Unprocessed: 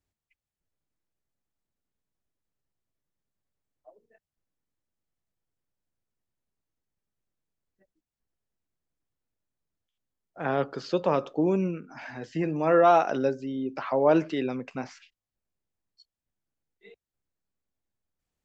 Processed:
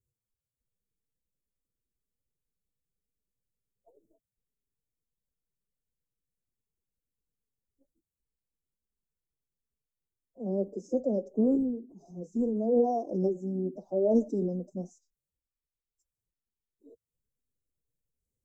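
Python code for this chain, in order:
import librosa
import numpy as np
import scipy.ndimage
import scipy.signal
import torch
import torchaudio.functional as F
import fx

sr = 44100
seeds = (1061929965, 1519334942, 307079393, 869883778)

y = scipy.signal.sosfilt(scipy.signal.cheby2(4, 60, [1200.0, 3100.0], 'bandstop', fs=sr, output='sos'), x)
y = fx.pitch_keep_formants(y, sr, semitones=6.0)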